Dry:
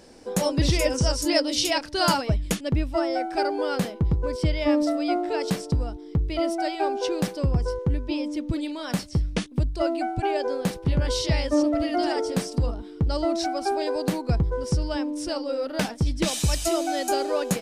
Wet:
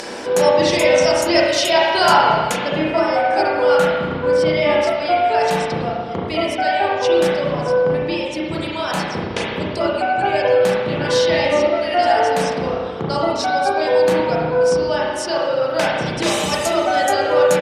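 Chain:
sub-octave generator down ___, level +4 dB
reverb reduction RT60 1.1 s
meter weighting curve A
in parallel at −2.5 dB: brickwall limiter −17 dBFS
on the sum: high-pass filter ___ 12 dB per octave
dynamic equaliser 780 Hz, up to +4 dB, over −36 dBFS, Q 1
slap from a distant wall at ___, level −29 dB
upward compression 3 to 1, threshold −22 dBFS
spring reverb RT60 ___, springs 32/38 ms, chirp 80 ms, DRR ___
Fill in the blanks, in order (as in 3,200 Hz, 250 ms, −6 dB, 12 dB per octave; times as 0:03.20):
2 octaves, 63 Hz, 40 metres, 1.7 s, −5.5 dB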